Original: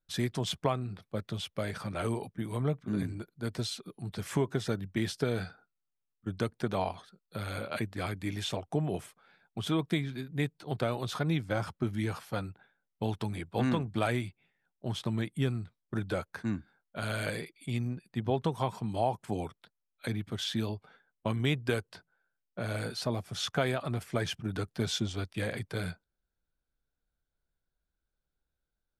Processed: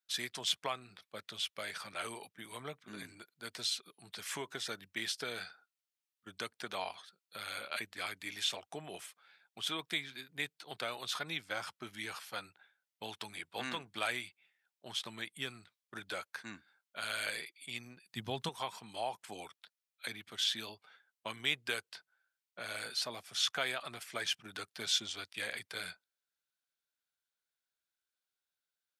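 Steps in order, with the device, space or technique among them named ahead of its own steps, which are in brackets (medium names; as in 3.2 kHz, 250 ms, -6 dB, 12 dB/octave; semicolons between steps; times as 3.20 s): 18.09–18.49 s: tone controls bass +13 dB, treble +8 dB; filter by subtraction (in parallel: low-pass 2.9 kHz 12 dB/octave + polarity flip); on the sum: trim +1 dB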